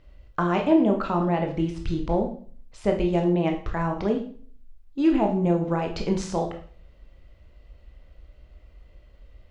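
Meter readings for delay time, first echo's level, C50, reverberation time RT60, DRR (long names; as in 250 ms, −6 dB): no echo audible, no echo audible, 8.5 dB, 0.45 s, 2.5 dB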